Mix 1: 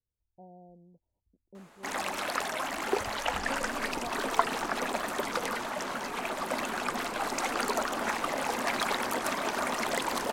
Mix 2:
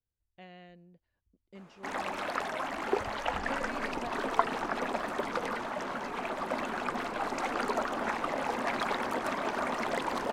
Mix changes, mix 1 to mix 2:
speech: remove brick-wall FIR low-pass 1000 Hz; master: add LPF 2000 Hz 6 dB/oct

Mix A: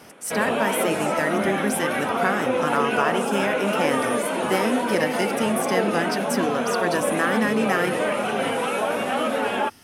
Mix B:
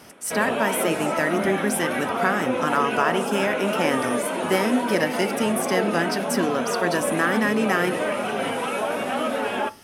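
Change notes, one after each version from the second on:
background -3.0 dB; reverb: on, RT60 0.40 s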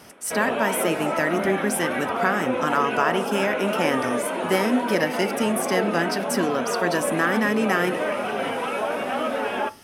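background: add tone controls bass -4 dB, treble -7 dB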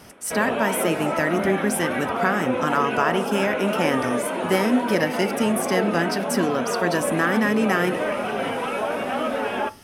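master: add low shelf 130 Hz +8.5 dB

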